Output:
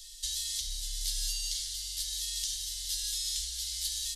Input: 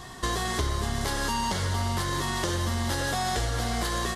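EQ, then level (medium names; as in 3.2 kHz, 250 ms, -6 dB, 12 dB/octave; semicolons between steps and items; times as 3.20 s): inverse Chebyshev band-stop 160–780 Hz, stop band 80 dB; +2.5 dB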